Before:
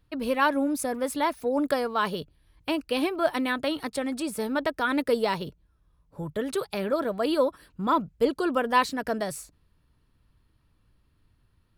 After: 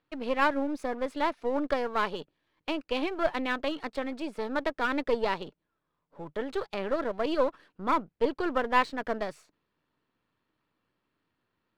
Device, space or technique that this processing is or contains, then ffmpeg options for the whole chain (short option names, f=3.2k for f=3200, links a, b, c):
crystal radio: -af "highpass=280,lowpass=3.3k,aeval=exprs='if(lt(val(0),0),0.447*val(0),val(0))':c=same"